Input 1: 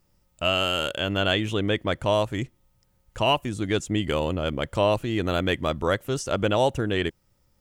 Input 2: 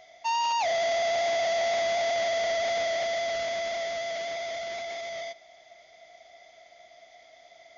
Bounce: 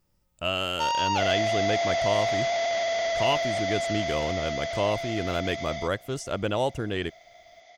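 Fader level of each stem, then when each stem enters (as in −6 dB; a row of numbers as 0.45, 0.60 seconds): −4.5, +0.5 decibels; 0.00, 0.55 seconds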